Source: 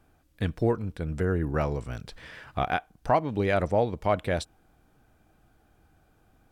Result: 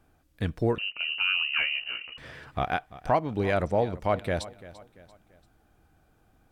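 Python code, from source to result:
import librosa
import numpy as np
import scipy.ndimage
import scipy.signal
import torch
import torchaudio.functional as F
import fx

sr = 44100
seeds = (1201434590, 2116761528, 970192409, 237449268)

y = fx.echo_feedback(x, sr, ms=341, feedback_pct=42, wet_db=-17.5)
y = fx.freq_invert(y, sr, carrier_hz=2900, at=(0.78, 2.18))
y = F.gain(torch.from_numpy(y), -1.0).numpy()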